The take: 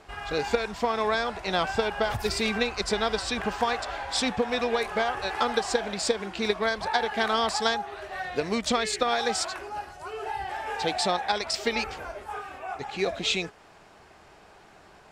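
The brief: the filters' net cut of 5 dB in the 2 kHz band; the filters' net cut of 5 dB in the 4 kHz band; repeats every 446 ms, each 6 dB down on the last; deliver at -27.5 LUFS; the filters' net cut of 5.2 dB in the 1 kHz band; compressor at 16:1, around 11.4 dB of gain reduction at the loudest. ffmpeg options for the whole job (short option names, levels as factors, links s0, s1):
-af "equalizer=f=1000:t=o:g=-6.5,equalizer=f=2000:t=o:g=-3,equalizer=f=4000:t=o:g=-5,acompressor=threshold=0.0251:ratio=16,aecho=1:1:446|892|1338|1784|2230|2676:0.501|0.251|0.125|0.0626|0.0313|0.0157,volume=2.82"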